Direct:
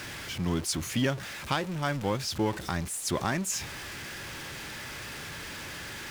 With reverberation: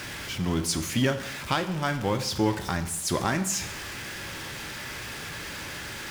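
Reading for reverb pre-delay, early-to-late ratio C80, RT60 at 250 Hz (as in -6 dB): 6 ms, 13.5 dB, 0.90 s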